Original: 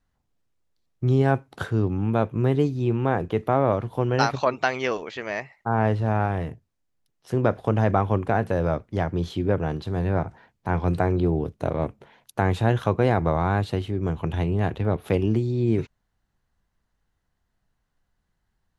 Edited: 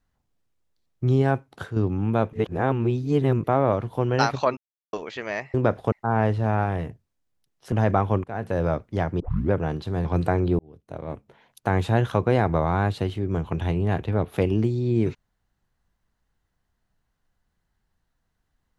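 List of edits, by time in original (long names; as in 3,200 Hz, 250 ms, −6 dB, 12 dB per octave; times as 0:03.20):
0:01.15–0:01.76: fade out, to −7 dB
0:02.33–0:03.44: reverse
0:04.57–0:04.93: silence
0:07.34–0:07.72: move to 0:05.54
0:08.24–0:08.60: fade in, from −22.5 dB
0:09.20: tape start 0.31 s
0:10.05–0:10.77: remove
0:11.31–0:12.50: fade in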